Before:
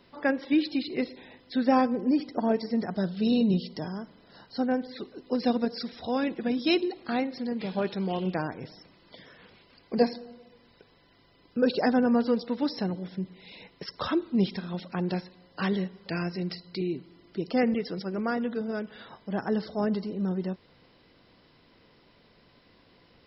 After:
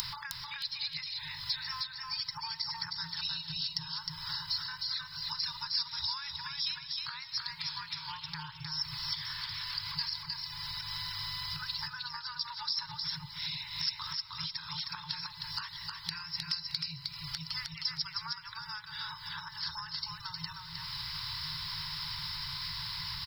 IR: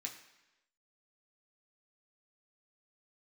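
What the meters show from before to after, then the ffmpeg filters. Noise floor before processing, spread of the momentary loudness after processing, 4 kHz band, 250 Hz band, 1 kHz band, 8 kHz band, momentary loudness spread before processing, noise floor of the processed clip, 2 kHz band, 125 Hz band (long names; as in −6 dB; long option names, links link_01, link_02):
−61 dBFS, 6 LU, +8.5 dB, below −25 dB, −9.0 dB, can't be measured, 15 LU, −48 dBFS, −4.0 dB, −10.5 dB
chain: -filter_complex "[0:a]acompressor=mode=upward:threshold=-35dB:ratio=2.5,afftfilt=real='re*(1-between(b*sr/4096,170,840))':imag='im*(1-between(b*sr/4096,170,840))':win_size=4096:overlap=0.75,acompressor=threshold=-50dB:ratio=16,aexciter=amount=4:drive=7.1:freq=4000,asplit=2[link_01][link_02];[link_02]aecho=0:1:311|622|933:0.668|0.147|0.0323[link_03];[link_01][link_03]amix=inputs=2:normalize=0,volume=8.5dB"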